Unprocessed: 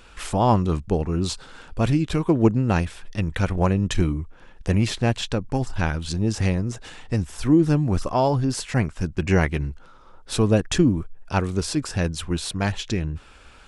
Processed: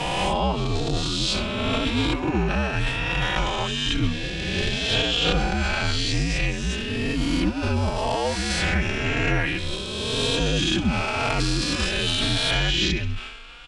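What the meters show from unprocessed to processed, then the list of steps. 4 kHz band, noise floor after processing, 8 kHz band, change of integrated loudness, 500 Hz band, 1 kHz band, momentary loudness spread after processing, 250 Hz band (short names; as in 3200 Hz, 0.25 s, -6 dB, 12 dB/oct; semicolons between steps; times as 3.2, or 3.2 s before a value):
+11.0 dB, -30 dBFS, +1.5 dB, 0.0 dB, -2.5 dB, 0.0 dB, 5 LU, -4.0 dB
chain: spectral swells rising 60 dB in 2.29 s; thin delay 66 ms, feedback 47%, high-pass 1600 Hz, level -16 dB; limiter -11 dBFS, peak gain reduction 9.5 dB; bell 3000 Hz +12.5 dB 1.2 oct; transient shaper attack -11 dB, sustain +8 dB; frequency shift -56 Hz; high shelf 10000 Hz -11.5 dB; endless flanger 3.7 ms +0.95 Hz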